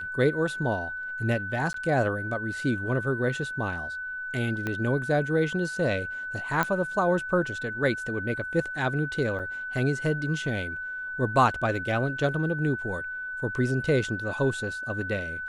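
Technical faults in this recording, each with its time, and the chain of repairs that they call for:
tone 1500 Hz -32 dBFS
1.73–1.74 gap 13 ms
4.67 pop -17 dBFS
6.63 pop -11 dBFS
9.39–9.4 gap 6.8 ms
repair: de-click; notch 1500 Hz, Q 30; interpolate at 1.73, 13 ms; interpolate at 9.39, 6.8 ms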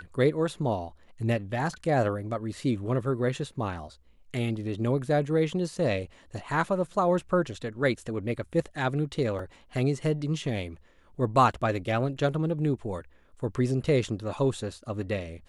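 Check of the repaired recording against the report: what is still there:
4.67 pop

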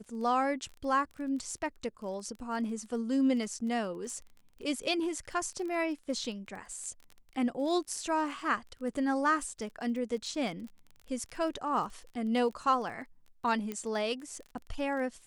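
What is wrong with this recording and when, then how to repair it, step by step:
crackle 23/s -40 dBFS
13.72 pop -22 dBFS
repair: de-click

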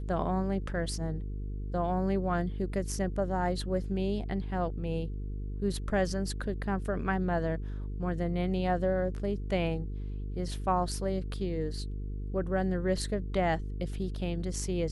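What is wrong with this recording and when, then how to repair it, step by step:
buzz 50 Hz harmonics 9 -36 dBFS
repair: de-hum 50 Hz, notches 9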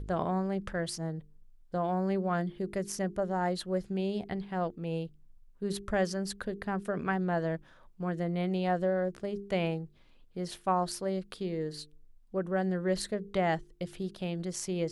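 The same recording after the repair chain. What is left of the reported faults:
none

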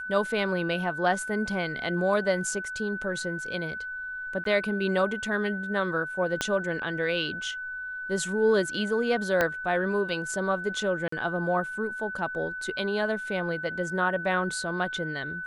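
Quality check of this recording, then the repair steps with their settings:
tone 1500 Hz -33 dBFS
4.44–4.45 gap 13 ms
6.41 pop -11 dBFS
9.41 pop -10 dBFS
11.08–11.12 gap 44 ms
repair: de-click; notch 1500 Hz, Q 30; interpolate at 4.44, 13 ms; interpolate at 11.08, 44 ms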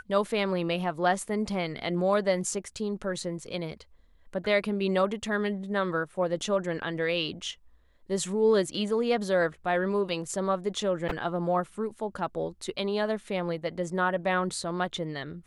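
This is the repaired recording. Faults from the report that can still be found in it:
6.41 pop
9.41 pop

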